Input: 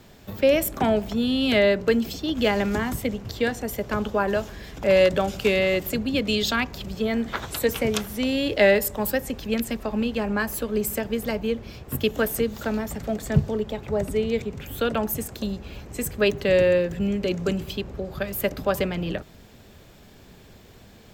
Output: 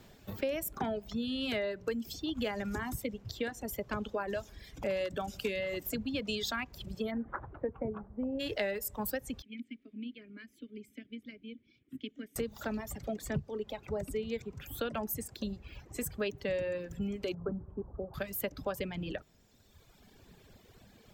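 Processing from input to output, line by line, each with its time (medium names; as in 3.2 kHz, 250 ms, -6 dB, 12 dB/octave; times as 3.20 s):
7.10–8.39 s: low-pass 1.7 kHz -> 1 kHz 24 dB/octave
9.42–12.36 s: vowel filter i
17.34–18.14 s: steep low-pass 1.4 kHz
whole clip: reverb removal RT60 1.7 s; compression 4:1, threshold -26 dBFS; trim -6 dB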